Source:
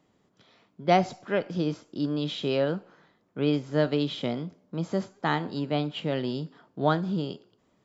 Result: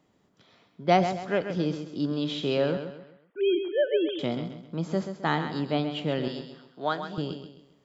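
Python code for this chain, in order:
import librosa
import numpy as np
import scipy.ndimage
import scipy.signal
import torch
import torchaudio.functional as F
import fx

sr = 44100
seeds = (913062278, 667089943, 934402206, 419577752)

y = fx.sine_speech(x, sr, at=(2.77, 4.19))
y = fx.highpass(y, sr, hz=830.0, slope=6, at=(6.28, 7.18))
y = fx.echo_feedback(y, sr, ms=132, feedback_pct=37, wet_db=-9.0)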